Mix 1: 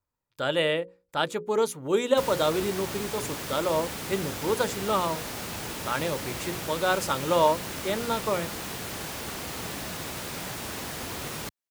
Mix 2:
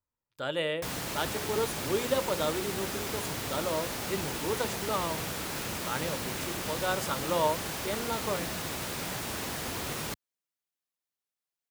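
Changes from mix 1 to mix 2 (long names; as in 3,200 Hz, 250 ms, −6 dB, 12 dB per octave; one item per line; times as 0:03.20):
speech −6.0 dB
background: entry −1.35 s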